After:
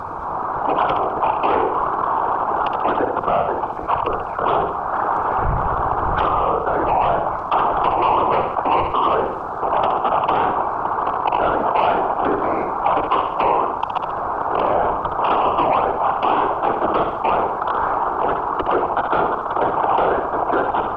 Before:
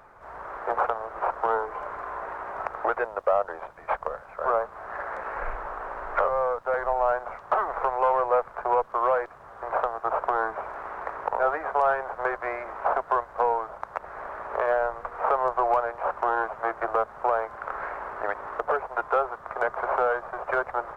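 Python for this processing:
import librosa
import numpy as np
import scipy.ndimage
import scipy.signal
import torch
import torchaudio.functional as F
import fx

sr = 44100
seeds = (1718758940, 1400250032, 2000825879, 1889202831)

p1 = fx.octave_divider(x, sr, octaves=2, level_db=-5.0)
p2 = fx.lowpass(p1, sr, hz=1300.0, slope=6)
p3 = fx.peak_eq(p2, sr, hz=97.0, db=-7.5, octaves=1.5)
p4 = fx.level_steps(p3, sr, step_db=19)
p5 = p3 + F.gain(torch.from_numpy(p4), 0.5).numpy()
p6 = fx.fixed_phaser(p5, sr, hz=370.0, stages=8)
p7 = fx.fold_sine(p6, sr, drive_db=5, ceiling_db=-12.5)
p8 = fx.whisperise(p7, sr, seeds[0])
p9 = p8 + fx.room_flutter(p8, sr, wall_m=11.6, rt60_s=0.44, dry=0)
y = fx.env_flatten(p9, sr, amount_pct=50)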